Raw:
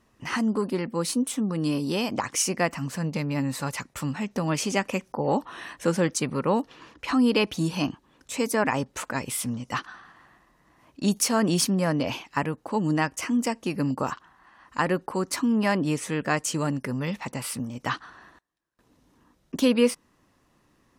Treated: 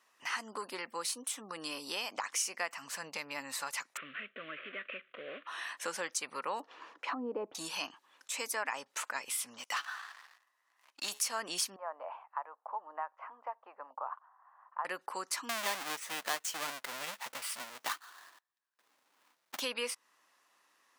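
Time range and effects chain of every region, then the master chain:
0:03.97–0:05.47: variable-slope delta modulation 16 kbit/s + downward compressor 3 to 1, threshold −28 dBFS + Butterworth band-reject 870 Hz, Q 1.3
0:06.60–0:07.55: treble cut that deepens with the level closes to 610 Hz, closed at −21 dBFS + high-pass filter 200 Hz 6 dB per octave + tilt shelving filter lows +9 dB, about 1,300 Hz
0:09.58–0:11.20: low-shelf EQ 440 Hz −11 dB + tuned comb filter 140 Hz, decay 0.93 s, mix 40% + leveller curve on the samples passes 3
0:11.76–0:14.85: flat-topped band-pass 840 Hz, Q 1.4 + high-frequency loss of the air 240 metres
0:15.49–0:19.61: each half-wave held at its own peak + expander for the loud parts, over −30 dBFS
whole clip: high-pass filter 940 Hz 12 dB per octave; downward compressor 2 to 1, threshold −37 dBFS

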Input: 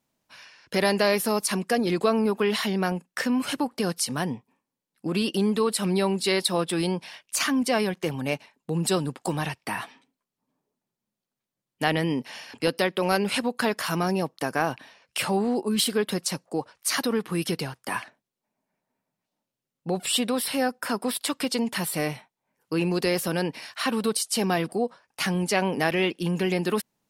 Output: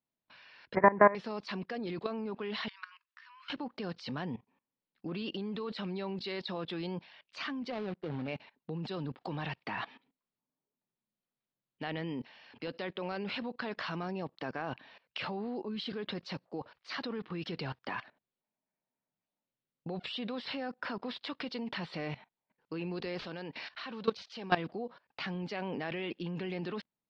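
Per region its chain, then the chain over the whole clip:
0:00.75–0:01.15: Butterworth low-pass 2,100 Hz 72 dB per octave + parametric band 1,000 Hz +10 dB 0.3 octaves + multiband upward and downward compressor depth 70%
0:02.68–0:03.50: linear-phase brick-wall high-pass 940 Hz + downward compressor 5 to 1, threshold −36 dBFS
0:07.70–0:08.28: running median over 41 samples + low-shelf EQ 210 Hz −5.5 dB
0:23.19–0:24.56: low-shelf EQ 360 Hz −4.5 dB + bad sample-rate conversion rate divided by 3×, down none, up zero stuff
whole clip: output level in coarse steps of 19 dB; Butterworth low-pass 4,400 Hz 36 dB per octave; level +1 dB

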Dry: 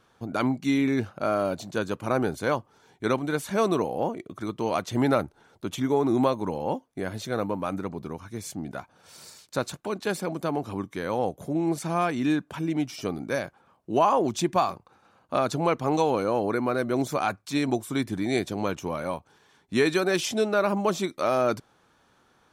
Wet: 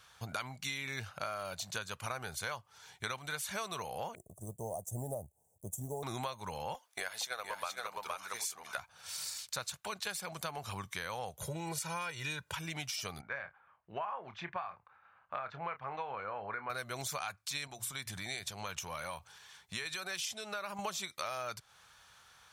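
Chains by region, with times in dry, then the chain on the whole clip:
0:04.15–0:06.03: mu-law and A-law mismatch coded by A + elliptic band-stop filter 680–7,800 Hz
0:06.74–0:08.78: high-pass filter 510 Hz + transient designer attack +8 dB, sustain +3 dB + single-tap delay 467 ms −4.5 dB
0:11.41–0:12.55: high-pass filter 75 Hz + low-shelf EQ 380 Hz +5.5 dB + comb filter 2.1 ms, depth 77%
0:13.21–0:16.70: transistor ladder low-pass 2,300 Hz, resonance 30% + low-shelf EQ 160 Hz −6.5 dB + double-tracking delay 29 ms −11 dB
0:17.67–0:20.79: mains-hum notches 60/120 Hz + downward compressor 2 to 1, threshold −35 dBFS
whole clip: high-pass filter 41 Hz; guitar amp tone stack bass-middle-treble 10-0-10; downward compressor 6 to 1, threshold −46 dBFS; level +9.5 dB

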